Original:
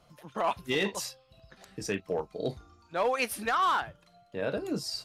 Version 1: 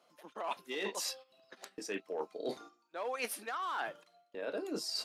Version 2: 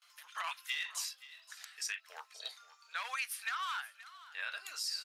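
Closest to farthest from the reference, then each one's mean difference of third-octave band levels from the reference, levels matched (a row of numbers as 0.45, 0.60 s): 1, 2; 6.0, 15.5 dB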